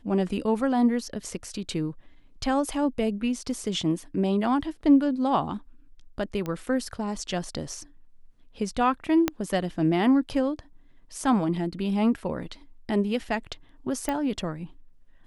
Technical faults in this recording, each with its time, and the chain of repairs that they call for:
6.46 s: pop -19 dBFS
9.28 s: pop -9 dBFS
14.09 s: pop -15 dBFS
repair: de-click

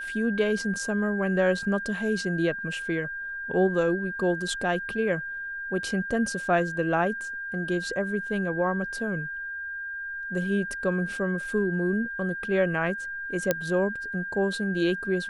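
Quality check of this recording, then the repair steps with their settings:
whine 1.6 kHz -32 dBFS
13.51 s: pop -8 dBFS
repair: de-click; band-stop 1.6 kHz, Q 30

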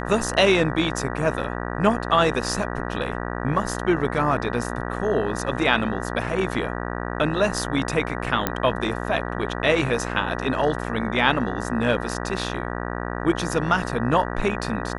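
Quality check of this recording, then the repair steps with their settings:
buzz 60 Hz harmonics 32 -29 dBFS
8.47 s: pop -6 dBFS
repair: de-click; de-hum 60 Hz, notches 32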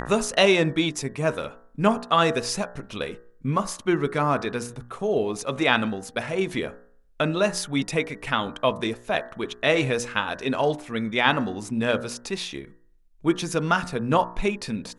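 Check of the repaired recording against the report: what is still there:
nothing left

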